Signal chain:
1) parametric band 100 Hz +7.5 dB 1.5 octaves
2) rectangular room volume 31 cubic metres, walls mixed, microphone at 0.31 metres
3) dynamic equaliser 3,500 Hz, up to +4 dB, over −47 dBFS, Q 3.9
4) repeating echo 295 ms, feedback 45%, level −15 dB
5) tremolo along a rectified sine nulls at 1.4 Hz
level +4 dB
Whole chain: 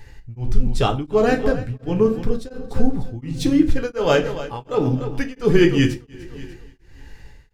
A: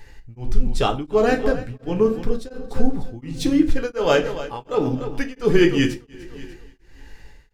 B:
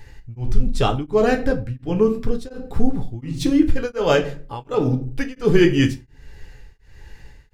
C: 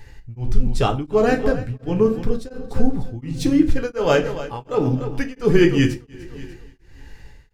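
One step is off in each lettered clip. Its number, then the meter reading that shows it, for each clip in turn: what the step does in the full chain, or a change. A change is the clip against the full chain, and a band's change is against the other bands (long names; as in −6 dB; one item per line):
1, 125 Hz band −5.0 dB
4, change in momentary loudness spread −3 LU
3, 4 kHz band −2.0 dB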